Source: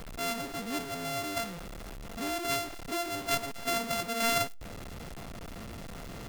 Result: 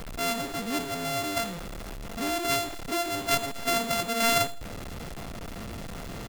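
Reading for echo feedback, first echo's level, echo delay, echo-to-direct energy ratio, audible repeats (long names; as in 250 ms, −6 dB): 33%, −18.0 dB, 81 ms, −17.5 dB, 2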